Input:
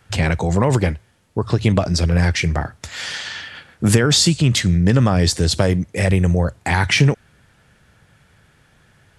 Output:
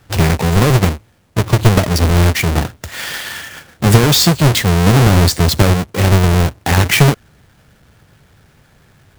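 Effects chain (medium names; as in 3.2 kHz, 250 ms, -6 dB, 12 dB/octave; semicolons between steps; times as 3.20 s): square wave that keeps the level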